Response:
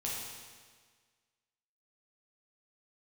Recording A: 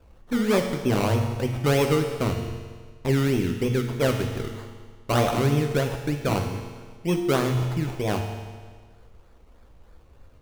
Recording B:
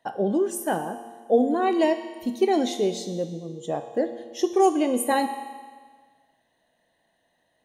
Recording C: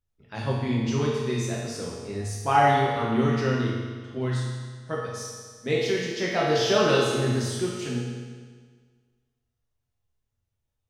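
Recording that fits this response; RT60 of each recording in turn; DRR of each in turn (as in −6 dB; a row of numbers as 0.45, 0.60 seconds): C; 1.6, 1.6, 1.6 seconds; 3.0, 8.0, −5.5 decibels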